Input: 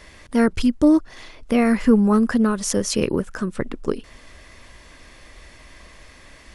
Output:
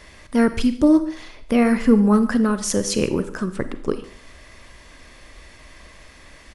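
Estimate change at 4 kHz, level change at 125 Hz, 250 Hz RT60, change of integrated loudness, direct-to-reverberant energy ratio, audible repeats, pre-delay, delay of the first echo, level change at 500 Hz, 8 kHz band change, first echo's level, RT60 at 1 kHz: +0.5 dB, +0.5 dB, 0.45 s, +0.5 dB, 10.5 dB, 1, 34 ms, 143 ms, +0.5 dB, +0.5 dB, -21.5 dB, 0.50 s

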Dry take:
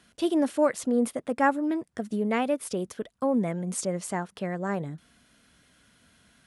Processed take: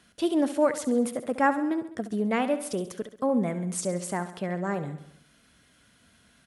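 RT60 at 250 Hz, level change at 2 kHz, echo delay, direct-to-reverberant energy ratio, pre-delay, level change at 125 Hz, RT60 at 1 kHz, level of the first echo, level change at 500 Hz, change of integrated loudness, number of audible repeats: no reverb, +0.5 dB, 68 ms, no reverb, no reverb, +0.5 dB, no reverb, -12.5 dB, +0.5 dB, 0.0 dB, 5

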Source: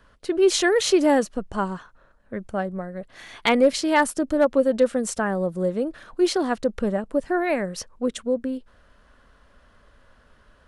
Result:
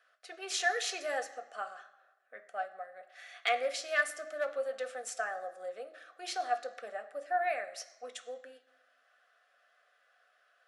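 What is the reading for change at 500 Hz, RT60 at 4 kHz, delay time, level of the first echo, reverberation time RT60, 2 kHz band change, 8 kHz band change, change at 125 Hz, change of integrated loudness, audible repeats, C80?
-16.0 dB, 0.90 s, no echo, no echo, 1.0 s, -6.0 dB, -10.5 dB, under -40 dB, -13.0 dB, no echo, 15.5 dB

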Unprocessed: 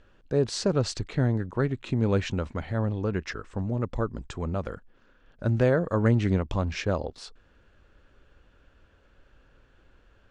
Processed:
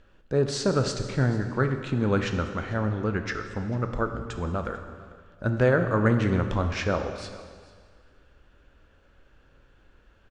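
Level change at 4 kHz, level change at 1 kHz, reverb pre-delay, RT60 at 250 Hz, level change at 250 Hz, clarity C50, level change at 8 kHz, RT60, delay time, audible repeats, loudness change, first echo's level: +1.0 dB, +4.5 dB, 4 ms, 1.7 s, +1.0 dB, 7.5 dB, +1.0 dB, 1.8 s, 445 ms, 1, +1.0 dB, -21.5 dB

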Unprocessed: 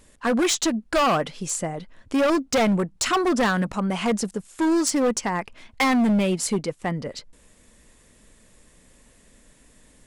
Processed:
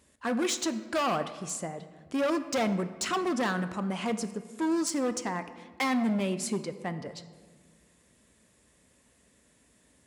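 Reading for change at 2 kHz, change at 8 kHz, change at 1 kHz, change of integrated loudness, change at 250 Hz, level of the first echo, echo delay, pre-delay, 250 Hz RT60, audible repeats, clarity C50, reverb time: -7.5 dB, -8.0 dB, -7.5 dB, -7.5 dB, -7.5 dB, no echo, no echo, 3 ms, 2.0 s, no echo, 12.5 dB, 1.6 s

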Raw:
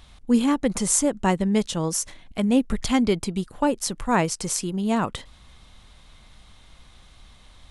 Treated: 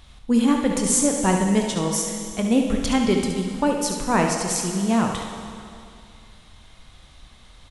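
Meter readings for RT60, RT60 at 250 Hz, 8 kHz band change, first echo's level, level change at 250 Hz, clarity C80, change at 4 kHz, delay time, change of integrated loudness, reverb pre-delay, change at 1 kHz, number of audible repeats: 2.4 s, 2.5 s, +2.0 dB, -8.0 dB, +2.0 dB, 5.0 dB, +2.5 dB, 71 ms, +2.0 dB, 20 ms, +2.0 dB, 1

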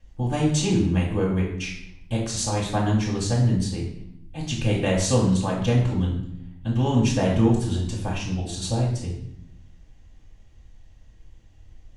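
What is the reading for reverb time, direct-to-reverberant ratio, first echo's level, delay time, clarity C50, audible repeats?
0.70 s, -6.5 dB, no echo, no echo, 4.5 dB, no echo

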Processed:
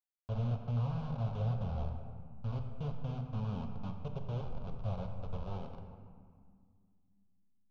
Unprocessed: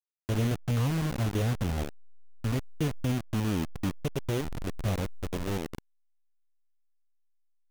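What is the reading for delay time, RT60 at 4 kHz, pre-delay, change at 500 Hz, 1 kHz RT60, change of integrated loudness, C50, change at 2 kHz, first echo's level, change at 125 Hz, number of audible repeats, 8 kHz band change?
no echo, 1.1 s, 5 ms, -10.0 dB, 1.9 s, -7.5 dB, 5.5 dB, -18.5 dB, no echo, -5.5 dB, no echo, under -25 dB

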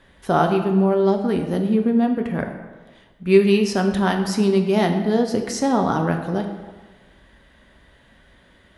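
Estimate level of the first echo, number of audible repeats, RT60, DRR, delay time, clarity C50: no echo, no echo, 1.3 s, 4.0 dB, no echo, 7.5 dB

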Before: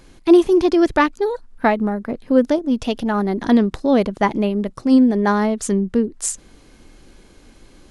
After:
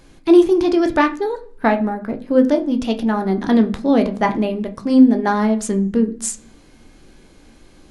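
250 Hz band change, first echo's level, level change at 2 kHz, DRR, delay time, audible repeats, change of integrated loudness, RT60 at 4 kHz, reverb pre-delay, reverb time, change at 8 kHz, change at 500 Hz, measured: +1.0 dB, no echo, 0.0 dB, 5.5 dB, no echo, no echo, +0.5 dB, 0.50 s, 13 ms, 0.50 s, -1.0 dB, 0.0 dB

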